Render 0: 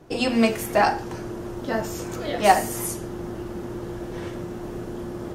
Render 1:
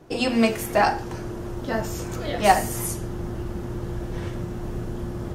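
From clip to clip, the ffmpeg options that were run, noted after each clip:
-af "asubboost=boost=3:cutoff=170"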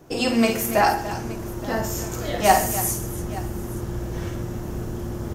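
-filter_complex "[0:a]aexciter=amount=1.8:drive=5.7:freq=5600,asplit=2[s0][s1];[s1]aecho=0:1:51|129|286|871:0.447|0.141|0.211|0.112[s2];[s0][s2]amix=inputs=2:normalize=0"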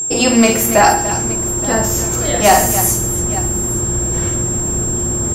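-af "apsyclip=3.76,aeval=exprs='val(0)+0.178*sin(2*PI*7500*n/s)':c=same,volume=0.708"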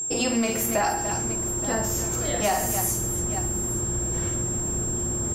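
-af "acompressor=threshold=0.282:ratio=6,volume=0.355"

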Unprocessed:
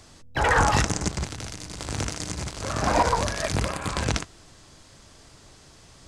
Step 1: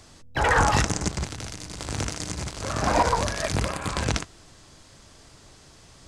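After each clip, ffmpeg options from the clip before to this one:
-af anull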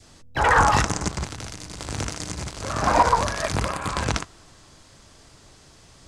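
-af "adynamicequalizer=threshold=0.0158:dfrequency=1100:dqfactor=1.4:tfrequency=1100:tqfactor=1.4:attack=5:release=100:ratio=0.375:range=3:mode=boostabove:tftype=bell"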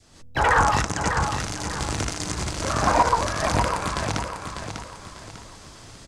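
-filter_complex "[0:a]dynaudnorm=f=110:g=3:m=3.55,asplit=2[s0][s1];[s1]aecho=0:1:597|1194|1791|2388:0.447|0.165|0.0612|0.0226[s2];[s0][s2]amix=inputs=2:normalize=0,volume=0.501"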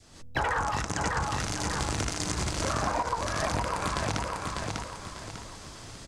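-af "acompressor=threshold=0.0562:ratio=12"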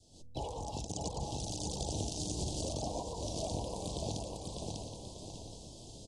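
-af "asuperstop=centerf=1600:order=8:qfactor=0.66,aecho=1:1:773:0.266,volume=0.447" -ar 24000 -c:a aac -b:a 32k

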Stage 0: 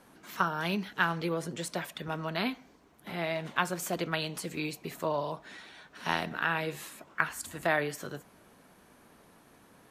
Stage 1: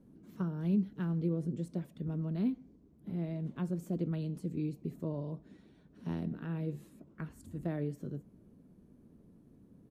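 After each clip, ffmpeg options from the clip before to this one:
-af "firequalizer=gain_entry='entry(210,0);entry(770,-24);entry(1600,-29);entry(8500,-26)':delay=0.05:min_phase=1,volume=1.68"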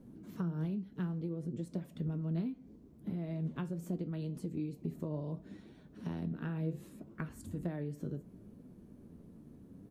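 -af "acompressor=threshold=0.01:ratio=6,flanger=delay=7.8:depth=5.9:regen=71:speed=0.69:shape=triangular,volume=2.99"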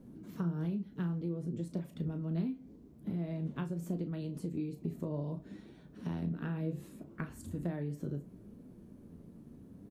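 -filter_complex "[0:a]asplit=2[s0][s1];[s1]adelay=35,volume=0.316[s2];[s0][s2]amix=inputs=2:normalize=0,volume=1.12"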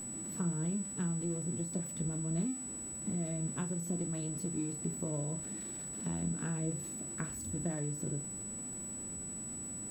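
-af "aeval=exprs='val(0)+0.5*0.00422*sgn(val(0))':c=same,aeval=exprs='val(0)+0.01*sin(2*PI*7900*n/s)':c=same,volume=0.891"

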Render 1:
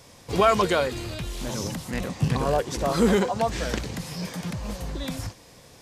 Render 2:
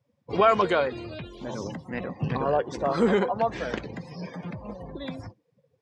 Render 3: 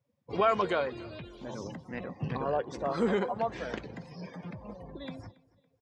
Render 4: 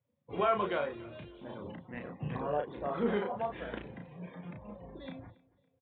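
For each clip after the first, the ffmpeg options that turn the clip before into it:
-af "highpass=91,afftdn=nr=29:nf=-39,bass=f=250:g=-5,treble=f=4000:g=-12"
-af "aecho=1:1:280|560:0.0708|0.0255,volume=0.501"
-filter_complex "[0:a]asplit=2[s0][s1];[s1]adelay=34,volume=0.631[s2];[s0][s2]amix=inputs=2:normalize=0,aresample=8000,aresample=44100,volume=0.562"

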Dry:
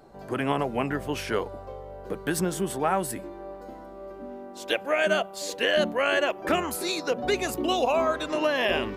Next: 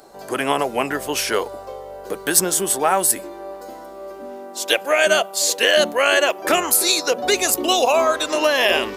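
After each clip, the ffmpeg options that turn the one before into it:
-af "bass=f=250:g=-13,treble=f=4000:g=11,volume=2.37"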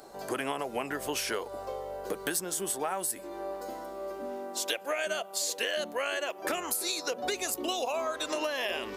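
-af "acompressor=threshold=0.0501:ratio=6,volume=0.668"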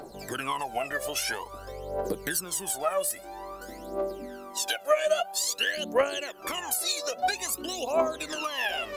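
-af "aphaser=in_gain=1:out_gain=1:delay=1.8:decay=0.8:speed=0.5:type=triangular,volume=0.841"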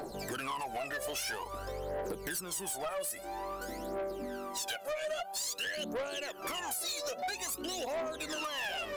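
-af "acompressor=threshold=0.0141:ratio=2,asoftclip=type=tanh:threshold=0.0178,volume=1.41"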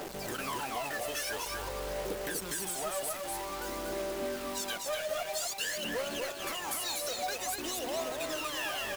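-filter_complex "[0:a]acrusher=bits=6:mix=0:aa=0.000001,asplit=2[s0][s1];[s1]aecho=0:1:244:0.668[s2];[s0][s2]amix=inputs=2:normalize=0"

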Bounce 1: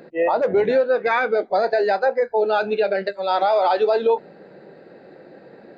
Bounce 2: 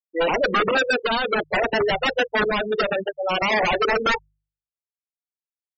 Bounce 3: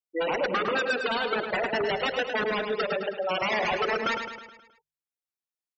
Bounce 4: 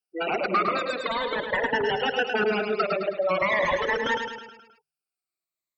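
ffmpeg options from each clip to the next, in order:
-af "aeval=exprs='(mod(4.73*val(0)+1,2)-1)/4.73':c=same,afftfilt=real='re*gte(hypot(re,im),0.158)':imag='im*gte(hypot(re,im),0.158)':win_size=1024:overlap=0.75,bandreject=f=50.03:t=h:w=4,bandreject=f=100.06:t=h:w=4,bandreject=f=150.09:t=h:w=4"
-filter_complex "[0:a]acompressor=threshold=0.0708:ratio=3,highpass=f=77:p=1,asplit=2[s0][s1];[s1]aecho=0:1:106|212|318|424|530|636:0.447|0.232|0.121|0.0628|0.0327|0.017[s2];[s0][s2]amix=inputs=2:normalize=0,volume=0.708"
-filter_complex "[0:a]afftfilt=real='re*pow(10,15/40*sin(2*PI*(1.1*log(max(b,1)*sr/1024/100)/log(2)-(-0.42)*(pts-256)/sr)))':imag='im*pow(10,15/40*sin(2*PI*(1.1*log(max(b,1)*sr/1024/100)/log(2)-(-0.42)*(pts-256)/sr)))':win_size=1024:overlap=0.75,acrossover=split=2600[s0][s1];[s1]acompressor=threshold=0.0158:ratio=4:attack=1:release=60[s2];[s0][s2]amix=inputs=2:normalize=0"

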